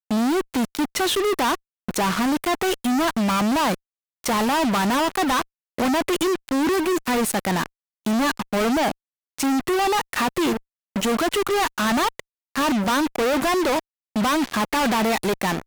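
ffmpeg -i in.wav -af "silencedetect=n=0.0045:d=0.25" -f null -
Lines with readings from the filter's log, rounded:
silence_start: 1.56
silence_end: 1.89 | silence_duration: 0.32
silence_start: 3.75
silence_end: 4.24 | silence_duration: 0.49
silence_start: 5.43
silence_end: 5.78 | silence_duration: 0.35
silence_start: 7.66
silence_end: 8.05 | silence_duration: 0.39
silence_start: 8.92
silence_end: 9.39 | silence_duration: 0.47
silence_start: 10.59
silence_end: 10.96 | silence_duration: 0.37
silence_start: 12.20
silence_end: 12.56 | silence_duration: 0.36
silence_start: 13.80
silence_end: 14.16 | silence_duration: 0.36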